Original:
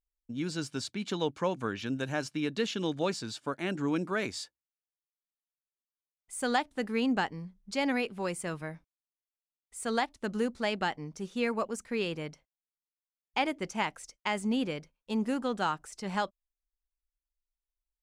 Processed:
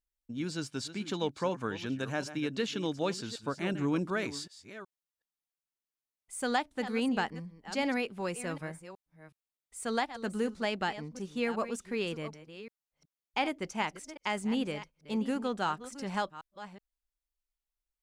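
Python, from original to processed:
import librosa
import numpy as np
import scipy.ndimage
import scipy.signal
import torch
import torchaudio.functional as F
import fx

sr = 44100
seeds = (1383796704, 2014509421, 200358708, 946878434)

y = fx.reverse_delay(x, sr, ms=373, wet_db=-13.0)
y = fx.low_shelf(y, sr, hz=110.0, db=11.5, at=(3.43, 4.17))
y = F.gain(torch.from_numpy(y), -1.5).numpy()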